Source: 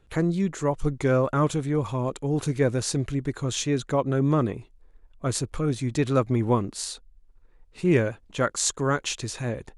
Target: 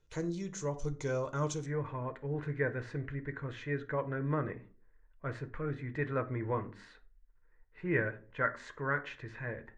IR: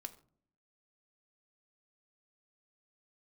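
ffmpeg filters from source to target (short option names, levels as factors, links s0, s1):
-filter_complex "[0:a]asetnsamples=n=441:p=0,asendcmd='1.66 lowpass f 1800',lowpass=f=6100:t=q:w=5[s0];[1:a]atrim=start_sample=2205,asetrate=66150,aresample=44100[s1];[s0][s1]afir=irnorm=-1:irlink=0,volume=0.596"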